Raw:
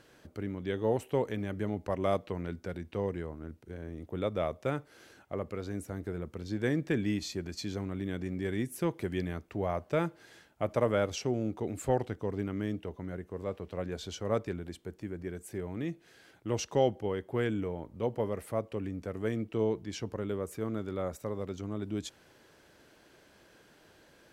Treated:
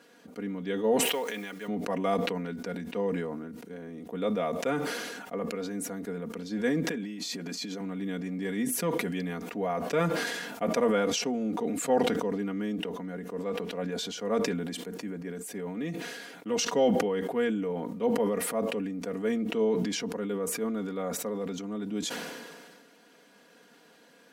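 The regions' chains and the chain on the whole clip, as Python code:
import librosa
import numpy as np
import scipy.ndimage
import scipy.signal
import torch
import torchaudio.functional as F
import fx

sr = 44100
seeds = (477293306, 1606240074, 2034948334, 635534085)

y = fx.chain(x, sr, fx.highpass(hz=1000.0, slope=6),
    fx.peak_eq(hz=3800.0, db=3.5, octaves=1.8),
    fx.quant_companded(bits=6), at=(1.05, 1.68))
y = fx.chain(y, sr, fx.highpass(hz=160.0, slope=12),
    fx.over_compress(threshold_db=-42.0, ratio=-1.0), at=(6.85, 7.81))
y = scipy.signal.sosfilt(scipy.signal.butter(4, 150.0, 'highpass', fs=sr, output='sos'), y)
y = y + 0.83 * np.pad(y, (int(4.2 * sr / 1000.0), 0))[:len(y)]
y = fx.sustainer(y, sr, db_per_s=31.0)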